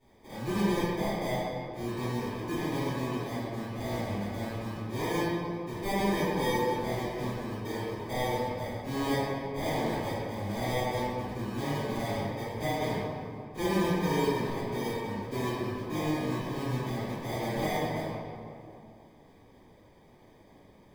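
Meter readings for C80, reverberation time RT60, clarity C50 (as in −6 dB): −2.0 dB, 2.5 s, −4.5 dB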